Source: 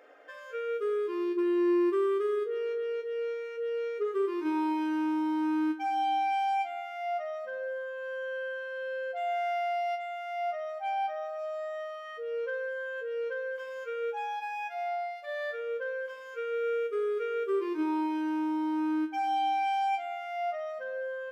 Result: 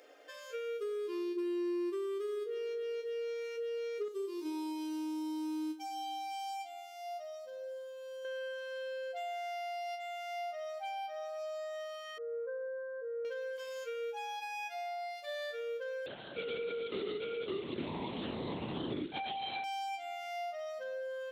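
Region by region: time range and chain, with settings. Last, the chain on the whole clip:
4.08–8.25 HPF 510 Hz 6 dB/oct + bell 1700 Hz -14 dB 1.6 oct
12.18–13.25 LPF 1400 Hz 24 dB/oct + fixed phaser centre 560 Hz, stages 8
16.06–19.64 companded quantiser 4-bit + LPC vocoder at 8 kHz whisper
whole clip: HPF 220 Hz; compressor, threshold -34 dBFS; EQ curve 340 Hz 0 dB, 1500 Hz -7 dB, 4300 Hz +9 dB

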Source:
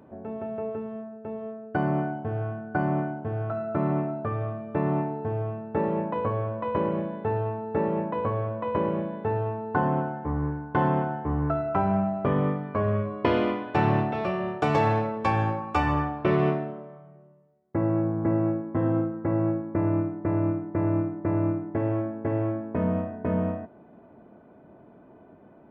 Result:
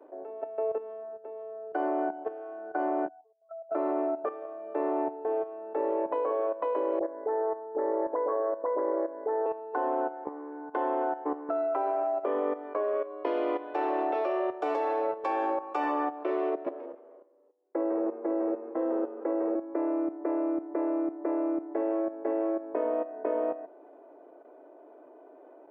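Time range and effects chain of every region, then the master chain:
3.08–3.71 spectral contrast raised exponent 3.2 + HPF 980 Hz 24 dB/oct + bell 2700 Hz -4 dB 1.6 oct
6.99–9.46 brick-wall FIR band-stop 2200–4700 Hz + dispersion highs, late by 49 ms, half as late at 940 Hz
16.49–19.55 dynamic EQ 480 Hz, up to +5 dB, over -44 dBFS, Q 4 + level quantiser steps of 13 dB + frequency-shifting echo 0.154 s, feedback 35%, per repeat -94 Hz, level -3.5 dB
whole clip: steep high-pass 280 Hz 72 dB/oct; bell 560 Hz +10.5 dB 2 oct; level quantiser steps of 12 dB; gain -4.5 dB

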